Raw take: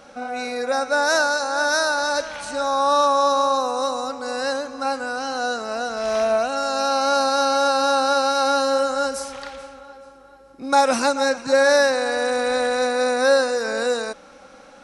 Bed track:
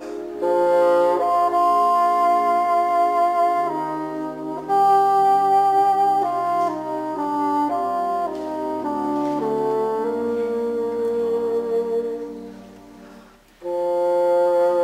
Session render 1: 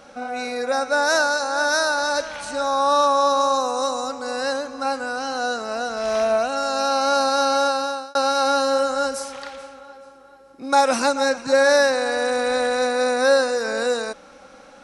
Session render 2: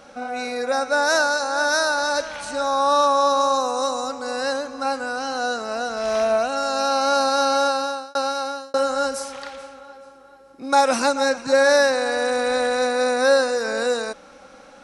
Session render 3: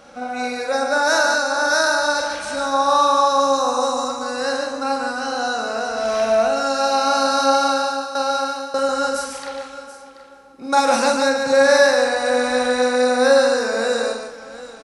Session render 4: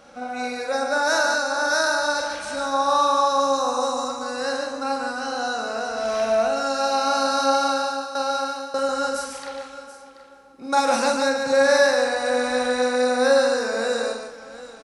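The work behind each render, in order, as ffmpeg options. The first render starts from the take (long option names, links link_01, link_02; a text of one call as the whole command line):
ffmpeg -i in.wav -filter_complex "[0:a]asettb=1/sr,asplit=3[link_01][link_02][link_03];[link_01]atrim=end=3.404[link_04];[link_02]atrim=start=3.4:end=4.23,asetpts=PTS-STARTPTS,afade=type=in:duration=0.004:curve=qsin,afade=type=out:start_time=0.826:duration=0.004:curve=qsin,equalizer=frequency=7000:width_type=o:width=0.58:gain=5.5[link_05];[link_03]atrim=start=4.226[link_06];[link_04][link_05]acrossfade=duration=0.004:curve1=hsin:curve2=qsin[link_07];[link_07][link_06]acrossfade=duration=0.004:curve1=qsin:curve2=hsin,asettb=1/sr,asplit=3[link_08][link_09][link_10];[link_08]atrim=end=9.154[link_11];[link_09]atrim=start=9.15:end=11.01,asetpts=PTS-STARTPTS,afade=type=in:duration=0.004:curve=qsin,afade=type=out:start_time=1.856:duration=0.004:curve=qsin,lowshelf=frequency=91:gain=-11[link_12];[link_10]atrim=start=11.006[link_13];[link_11][link_12]acrossfade=duration=0.004:curve1=hsin:curve2=qsin[link_14];[link_14][link_13]acrossfade=duration=0.004:curve1=qsin:curve2=hsin,asplit=2[link_15][link_16];[link_15]atrim=end=8.15,asetpts=PTS-STARTPTS,afade=type=out:start_time=7.6:duration=0.55[link_17];[link_16]atrim=start=8.15,asetpts=PTS-STARTPTS,afade=type=in:duration=0.004:curve=hsin[link_18];[link_17][link_18]concat=n=2:v=0:a=1" out.wav
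ffmpeg -i in.wav -filter_complex "[0:a]asplit=2[link_01][link_02];[link_01]atrim=end=8.74,asetpts=PTS-STARTPTS,afade=type=out:start_time=7.71:duration=1.03:curve=qsin[link_03];[link_02]atrim=start=8.74,asetpts=PTS-STARTPTS,afade=type=in:duration=0.004:curve=hsin[link_04];[link_03][link_04]concat=n=2:v=0:a=1" out.wav
ffmpeg -i in.wav -filter_complex "[0:a]asplit=2[link_01][link_02];[link_02]adelay=44,volume=-5dB[link_03];[link_01][link_03]amix=inputs=2:normalize=0,asplit=2[link_04][link_05];[link_05]aecho=0:1:145|732:0.562|0.178[link_06];[link_04][link_06]amix=inputs=2:normalize=0" out.wav
ffmpeg -i in.wav -af "volume=-3.5dB" out.wav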